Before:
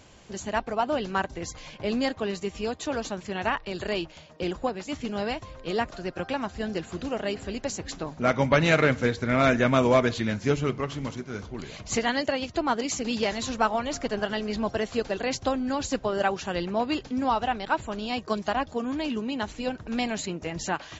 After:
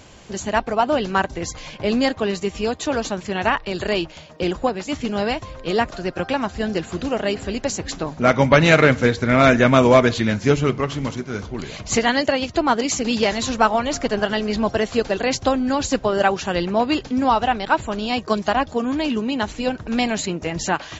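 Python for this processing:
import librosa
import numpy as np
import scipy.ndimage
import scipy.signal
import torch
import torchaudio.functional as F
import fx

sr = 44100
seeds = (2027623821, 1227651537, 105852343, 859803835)

y = x * librosa.db_to_amplitude(7.5)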